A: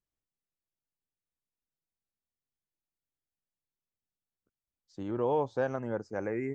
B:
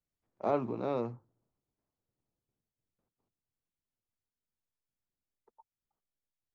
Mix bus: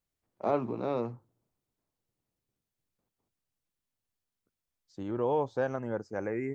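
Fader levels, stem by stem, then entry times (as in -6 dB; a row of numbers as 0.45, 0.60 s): 0.0, +1.5 dB; 0.00, 0.00 s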